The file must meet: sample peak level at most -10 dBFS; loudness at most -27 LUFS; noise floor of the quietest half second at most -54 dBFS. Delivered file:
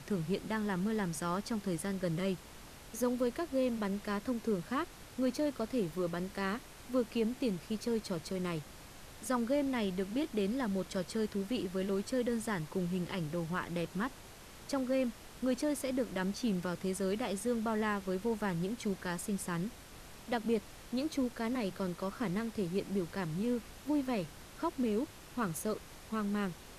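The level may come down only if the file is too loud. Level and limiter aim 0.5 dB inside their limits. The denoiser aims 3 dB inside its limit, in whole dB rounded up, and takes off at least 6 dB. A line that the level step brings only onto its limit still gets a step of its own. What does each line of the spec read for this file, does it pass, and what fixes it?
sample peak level -21.0 dBFS: OK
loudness -36.0 LUFS: OK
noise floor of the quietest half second -52 dBFS: fail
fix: denoiser 6 dB, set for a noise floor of -52 dBFS

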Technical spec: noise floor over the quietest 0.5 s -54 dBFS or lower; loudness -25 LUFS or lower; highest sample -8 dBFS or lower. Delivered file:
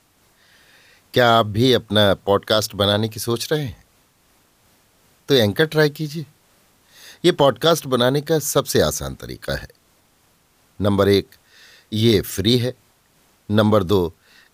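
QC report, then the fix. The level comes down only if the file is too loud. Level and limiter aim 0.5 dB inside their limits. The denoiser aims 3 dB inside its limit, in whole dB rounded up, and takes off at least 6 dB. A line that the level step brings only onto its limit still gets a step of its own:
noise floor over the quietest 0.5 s -59 dBFS: OK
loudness -18.5 LUFS: fail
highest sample -3.5 dBFS: fail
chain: gain -7 dB

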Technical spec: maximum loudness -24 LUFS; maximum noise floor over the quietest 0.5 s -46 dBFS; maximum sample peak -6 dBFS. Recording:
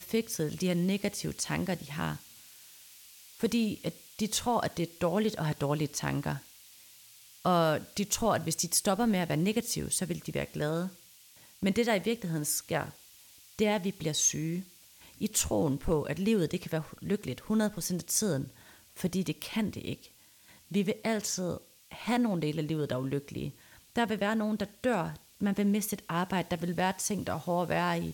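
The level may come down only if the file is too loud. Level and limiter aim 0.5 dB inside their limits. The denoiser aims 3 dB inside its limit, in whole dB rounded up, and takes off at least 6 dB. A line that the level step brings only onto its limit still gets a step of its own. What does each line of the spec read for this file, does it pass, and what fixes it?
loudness -31.5 LUFS: OK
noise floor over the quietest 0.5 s -58 dBFS: OK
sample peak -12.0 dBFS: OK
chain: none

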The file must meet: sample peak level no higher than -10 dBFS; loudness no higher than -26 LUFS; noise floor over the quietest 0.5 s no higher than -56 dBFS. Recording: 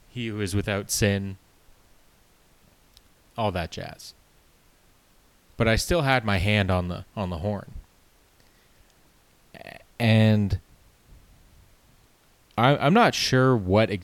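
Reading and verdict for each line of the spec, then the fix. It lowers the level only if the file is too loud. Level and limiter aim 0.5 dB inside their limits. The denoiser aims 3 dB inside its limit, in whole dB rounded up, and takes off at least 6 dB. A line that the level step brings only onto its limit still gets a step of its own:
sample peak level -6.0 dBFS: fail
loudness -23.5 LUFS: fail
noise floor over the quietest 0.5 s -59 dBFS: OK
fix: gain -3 dB; limiter -10.5 dBFS

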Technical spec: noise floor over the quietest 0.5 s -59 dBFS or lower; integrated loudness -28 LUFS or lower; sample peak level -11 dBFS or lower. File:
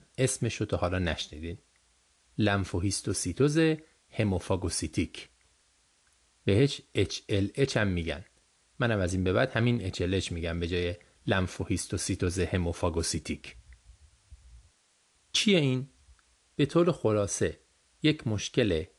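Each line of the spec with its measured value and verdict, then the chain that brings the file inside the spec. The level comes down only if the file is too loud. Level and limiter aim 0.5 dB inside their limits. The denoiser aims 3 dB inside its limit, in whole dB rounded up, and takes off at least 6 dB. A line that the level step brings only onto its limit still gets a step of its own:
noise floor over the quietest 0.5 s -68 dBFS: OK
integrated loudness -29.0 LUFS: OK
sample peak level -12.0 dBFS: OK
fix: none

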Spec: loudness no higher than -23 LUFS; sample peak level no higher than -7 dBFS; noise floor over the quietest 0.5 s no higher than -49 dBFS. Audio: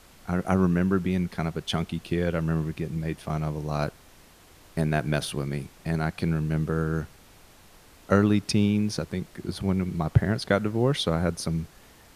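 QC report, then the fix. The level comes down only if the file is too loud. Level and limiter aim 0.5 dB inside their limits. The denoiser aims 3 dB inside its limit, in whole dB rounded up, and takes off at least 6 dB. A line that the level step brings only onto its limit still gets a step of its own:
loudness -27.0 LUFS: OK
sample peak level -5.5 dBFS: fail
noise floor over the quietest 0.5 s -53 dBFS: OK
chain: limiter -7.5 dBFS

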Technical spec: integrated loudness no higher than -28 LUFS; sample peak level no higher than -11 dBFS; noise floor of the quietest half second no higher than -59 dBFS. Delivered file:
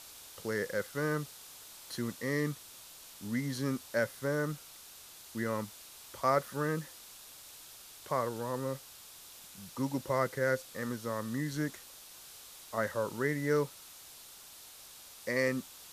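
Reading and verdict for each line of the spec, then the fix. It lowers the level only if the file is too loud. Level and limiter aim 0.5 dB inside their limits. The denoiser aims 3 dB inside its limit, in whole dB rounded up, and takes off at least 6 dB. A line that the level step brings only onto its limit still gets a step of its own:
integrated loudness -35.0 LUFS: OK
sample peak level -14.5 dBFS: OK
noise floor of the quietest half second -52 dBFS: fail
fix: denoiser 10 dB, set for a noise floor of -52 dBFS

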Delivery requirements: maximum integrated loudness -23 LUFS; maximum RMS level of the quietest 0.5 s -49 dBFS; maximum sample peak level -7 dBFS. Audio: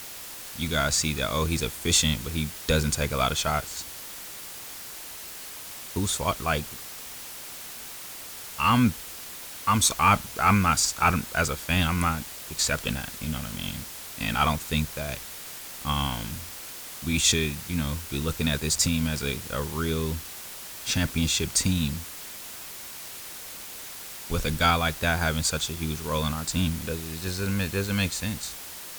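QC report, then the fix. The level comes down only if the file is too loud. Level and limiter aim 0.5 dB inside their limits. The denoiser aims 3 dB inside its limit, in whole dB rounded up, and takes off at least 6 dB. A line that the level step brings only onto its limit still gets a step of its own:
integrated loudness -27.0 LUFS: OK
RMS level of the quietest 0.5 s -40 dBFS: fail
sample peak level -8.0 dBFS: OK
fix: denoiser 12 dB, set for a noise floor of -40 dBFS

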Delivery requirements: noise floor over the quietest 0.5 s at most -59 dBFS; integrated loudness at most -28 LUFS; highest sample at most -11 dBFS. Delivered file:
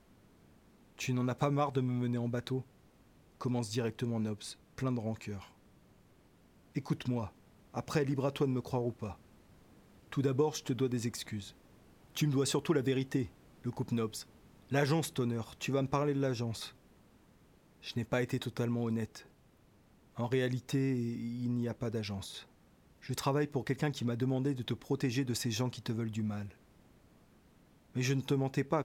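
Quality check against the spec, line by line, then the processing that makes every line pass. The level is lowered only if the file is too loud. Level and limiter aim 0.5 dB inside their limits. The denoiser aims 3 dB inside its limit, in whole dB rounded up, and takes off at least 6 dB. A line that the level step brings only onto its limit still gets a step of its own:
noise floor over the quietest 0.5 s -64 dBFS: OK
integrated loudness -35.0 LUFS: OK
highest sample -16.0 dBFS: OK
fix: none

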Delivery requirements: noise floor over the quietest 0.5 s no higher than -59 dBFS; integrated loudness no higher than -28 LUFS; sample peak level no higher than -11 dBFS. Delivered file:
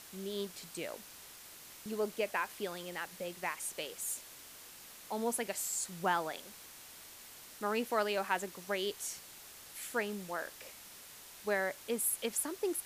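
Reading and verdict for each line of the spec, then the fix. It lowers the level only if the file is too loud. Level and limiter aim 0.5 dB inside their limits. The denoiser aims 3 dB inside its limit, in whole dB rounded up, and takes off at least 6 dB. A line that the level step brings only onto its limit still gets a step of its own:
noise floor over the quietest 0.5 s -53 dBFS: fail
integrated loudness -37.0 LUFS: OK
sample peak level -17.0 dBFS: OK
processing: denoiser 9 dB, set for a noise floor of -53 dBFS

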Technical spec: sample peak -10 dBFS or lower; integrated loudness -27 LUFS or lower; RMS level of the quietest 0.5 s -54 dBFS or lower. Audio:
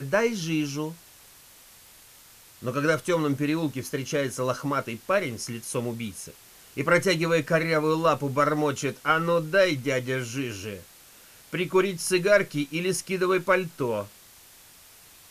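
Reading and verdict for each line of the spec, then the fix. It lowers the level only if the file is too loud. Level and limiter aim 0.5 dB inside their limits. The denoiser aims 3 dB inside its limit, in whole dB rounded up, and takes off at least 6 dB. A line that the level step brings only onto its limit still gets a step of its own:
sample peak -7.5 dBFS: fail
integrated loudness -26.0 LUFS: fail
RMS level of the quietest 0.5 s -52 dBFS: fail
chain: denoiser 6 dB, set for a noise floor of -52 dBFS; gain -1.5 dB; limiter -10.5 dBFS

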